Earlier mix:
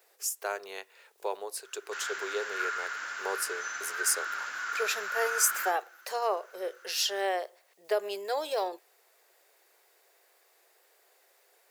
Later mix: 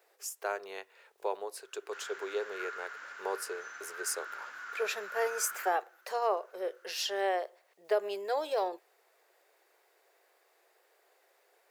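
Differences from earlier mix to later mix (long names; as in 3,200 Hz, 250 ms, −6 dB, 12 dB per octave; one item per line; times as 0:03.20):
background −7.0 dB
master: add high-shelf EQ 3,300 Hz −9 dB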